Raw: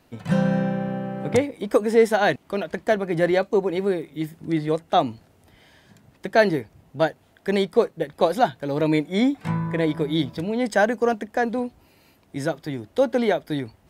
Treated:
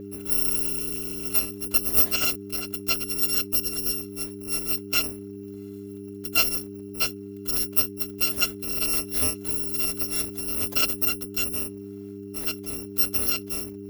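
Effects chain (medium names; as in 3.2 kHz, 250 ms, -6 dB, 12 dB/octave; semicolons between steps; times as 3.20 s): bit-reversed sample order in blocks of 256 samples; mains buzz 100 Hz, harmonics 4, -39 dBFS -2 dB/octave; ten-band graphic EQ 125 Hz -6 dB, 250 Hz +5 dB, 500 Hz +7 dB, 4 kHz -3 dB, 8 kHz -9 dB; trim -2 dB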